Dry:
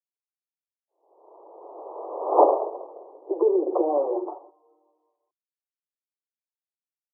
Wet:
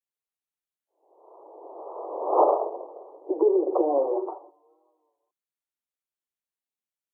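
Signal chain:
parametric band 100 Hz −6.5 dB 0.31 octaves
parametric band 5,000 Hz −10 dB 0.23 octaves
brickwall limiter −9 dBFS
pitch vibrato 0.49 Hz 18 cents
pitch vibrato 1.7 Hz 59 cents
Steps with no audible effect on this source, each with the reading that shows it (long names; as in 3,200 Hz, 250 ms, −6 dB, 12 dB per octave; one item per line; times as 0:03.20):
parametric band 100 Hz: nothing at its input below 270 Hz
parametric band 5,000 Hz: nothing at its input above 1,300 Hz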